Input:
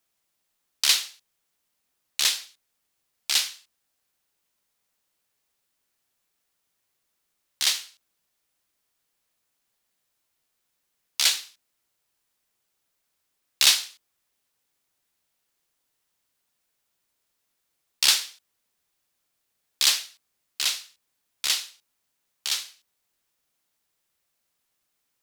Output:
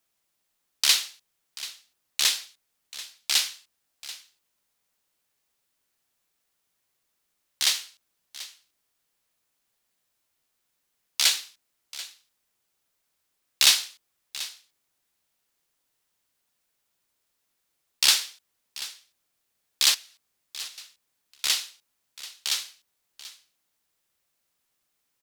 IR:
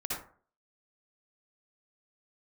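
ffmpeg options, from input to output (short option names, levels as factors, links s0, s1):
-filter_complex "[0:a]asettb=1/sr,asplit=3[s0][s1][s2];[s0]atrim=end=19.944[s3];[s1]atrim=start=19.94:end=20.78,asetpts=PTS-STARTPTS,afade=t=in:d=0.004:c=qsin,afade=t=out:st=0.836:d=0.004:c=qsin,acompressor=threshold=0.0112:ratio=20[s4];[s2]atrim=start=20.776[s5];[s3][s4]acrossfade=d=0.004:c1=hsin:c2=qsin[s6];[s6][s5]acrossfade=d=0.004:c1=qsin:c2=hsin,aecho=1:1:736:0.15"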